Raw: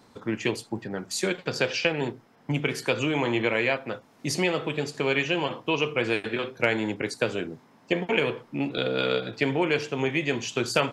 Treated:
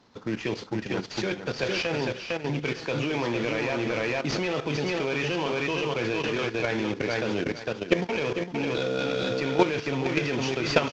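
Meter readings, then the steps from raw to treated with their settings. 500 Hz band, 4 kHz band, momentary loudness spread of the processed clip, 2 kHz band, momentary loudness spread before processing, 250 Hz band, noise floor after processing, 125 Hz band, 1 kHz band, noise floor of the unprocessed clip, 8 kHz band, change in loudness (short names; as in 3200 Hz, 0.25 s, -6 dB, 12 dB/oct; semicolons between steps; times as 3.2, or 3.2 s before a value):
0.0 dB, -1.5 dB, 6 LU, -2.0 dB, 8 LU, +0.5 dB, -40 dBFS, +0.5 dB, +0.5 dB, -58 dBFS, -5.0 dB, -1.0 dB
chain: CVSD 32 kbps; feedback echo 0.456 s, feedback 21%, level -4.5 dB; level quantiser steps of 11 dB; gain +5.5 dB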